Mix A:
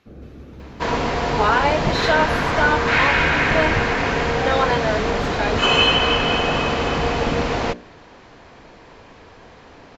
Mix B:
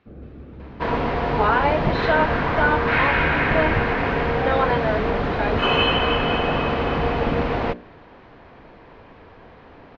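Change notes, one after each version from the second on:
master: add distance through air 310 m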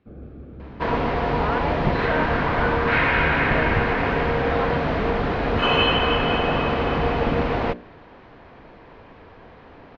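speech -8.5 dB

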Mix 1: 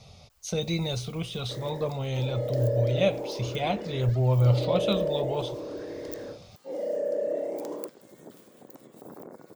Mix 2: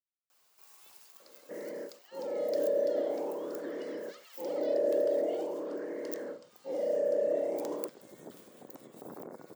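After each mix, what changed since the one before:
speech: muted; master: add bass shelf 150 Hz -6 dB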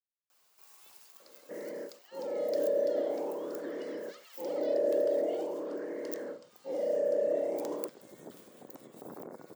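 no change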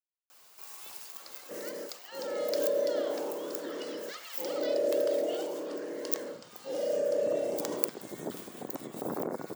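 first sound +11.0 dB

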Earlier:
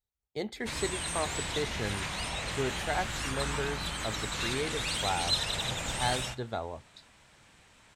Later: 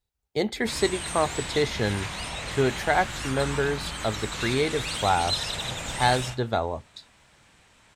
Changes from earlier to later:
speech +9.5 dB; background: send +6.0 dB

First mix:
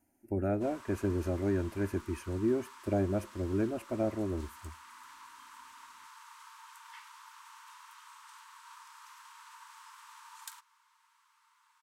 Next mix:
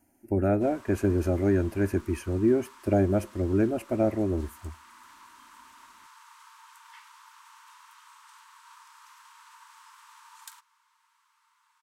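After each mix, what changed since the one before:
speech +7.0 dB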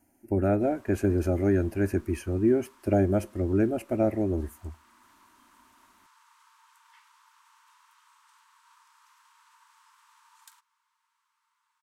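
background -8.0 dB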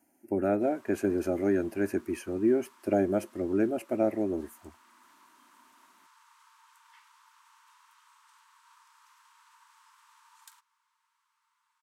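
speech: send -10.5 dB; master: add high-pass 210 Hz 12 dB/octave

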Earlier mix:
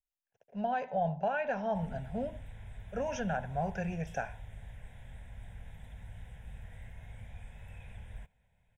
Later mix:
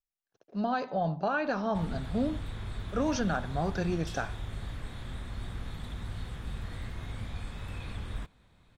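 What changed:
background +8.0 dB; master: remove static phaser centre 1.2 kHz, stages 6

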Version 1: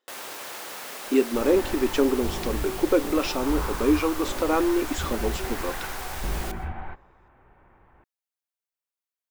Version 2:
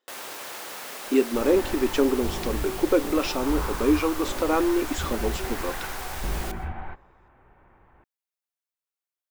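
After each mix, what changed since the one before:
no change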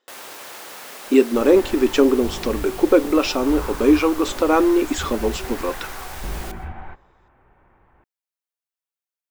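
speech +6.5 dB

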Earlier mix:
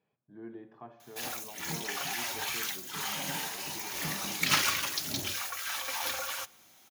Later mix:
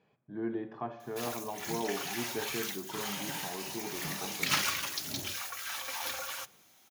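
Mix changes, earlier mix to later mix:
speech +10.0 dB; background -3.0 dB

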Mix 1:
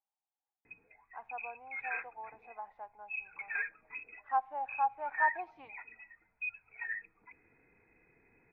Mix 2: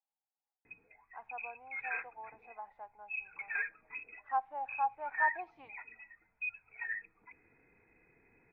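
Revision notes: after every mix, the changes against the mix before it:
reverb: off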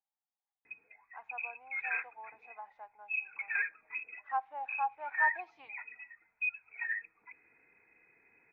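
master: add tilt EQ +3.5 dB/octave

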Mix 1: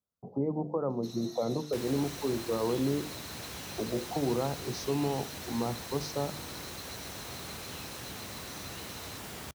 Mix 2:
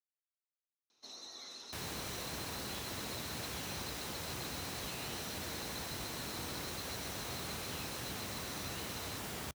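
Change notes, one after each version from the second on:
speech: muted; first sound: add low-pass 7.4 kHz 12 dB/octave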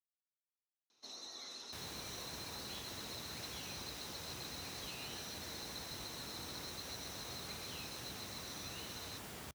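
second sound -6.5 dB

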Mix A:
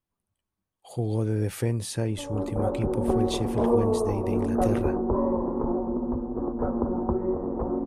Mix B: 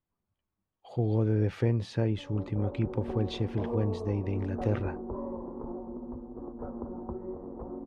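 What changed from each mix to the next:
background -11.5 dB; master: add distance through air 220 m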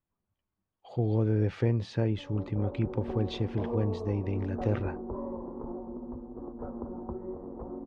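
speech: add low-pass 6.8 kHz 12 dB/octave

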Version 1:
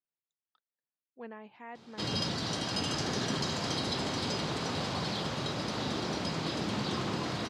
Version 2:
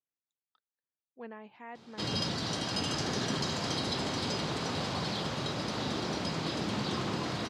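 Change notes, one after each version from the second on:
no change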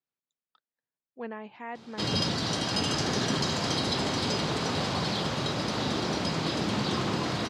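speech +7.0 dB; background +4.5 dB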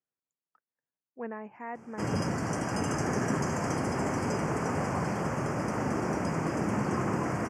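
master: add Butterworth band-stop 3.8 kHz, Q 0.82

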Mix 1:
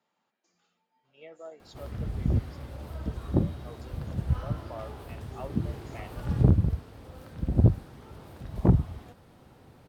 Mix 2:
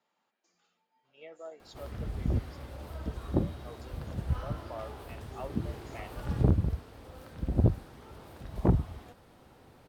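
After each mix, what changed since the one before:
master: add peaking EQ 130 Hz -5.5 dB 2 oct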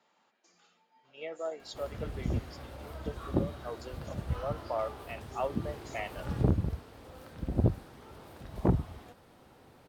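speech +8.5 dB; master: add bass shelf 89 Hz -6 dB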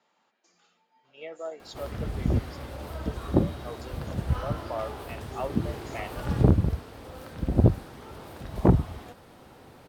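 background +7.0 dB

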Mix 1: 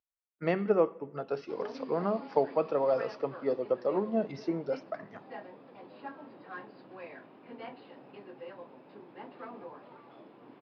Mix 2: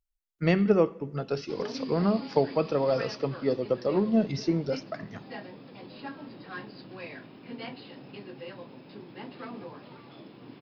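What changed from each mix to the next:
background: remove distance through air 90 m; master: remove band-pass filter 800 Hz, Q 0.77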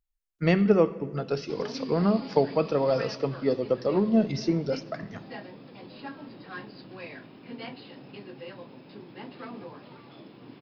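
speech: send +9.0 dB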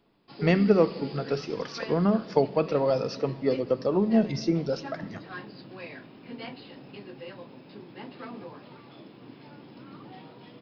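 background: entry -1.20 s

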